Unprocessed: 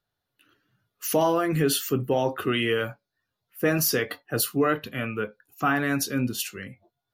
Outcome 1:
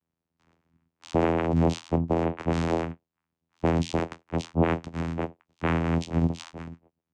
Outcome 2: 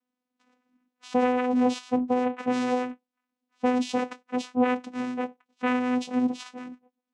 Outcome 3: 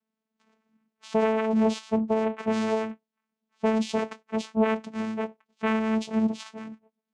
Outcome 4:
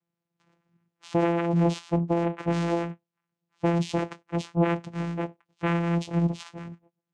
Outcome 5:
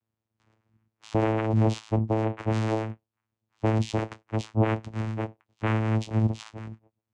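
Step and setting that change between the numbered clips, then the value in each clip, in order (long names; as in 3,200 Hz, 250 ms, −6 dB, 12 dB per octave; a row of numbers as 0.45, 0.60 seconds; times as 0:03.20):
channel vocoder, frequency: 83, 250, 220, 170, 110 Hertz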